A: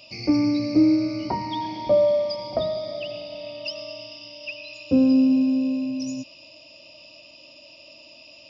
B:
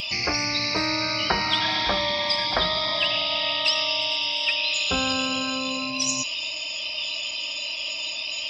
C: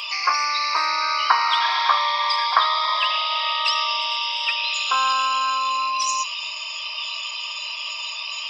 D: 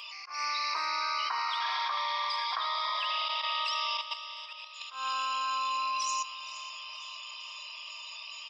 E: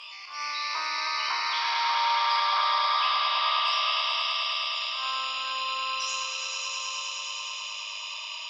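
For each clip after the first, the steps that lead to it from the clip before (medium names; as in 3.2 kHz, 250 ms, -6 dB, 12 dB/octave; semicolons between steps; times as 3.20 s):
spectral noise reduction 17 dB; graphic EQ 125/250/500/1000/2000/4000 Hz -9/-7/-11/+5/+8/+3 dB; spectrum-flattening compressor 4:1; trim +6.5 dB
resonant high-pass 1.1 kHz, resonance Q 8.2; trim -1 dB
level held to a coarse grid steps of 12 dB; slow attack 170 ms; feedback delay 467 ms, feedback 55%, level -16 dB; trim -8 dB
spectral sustain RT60 0.61 s; distance through air 52 m; echo with a slow build-up 105 ms, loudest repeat 5, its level -5.5 dB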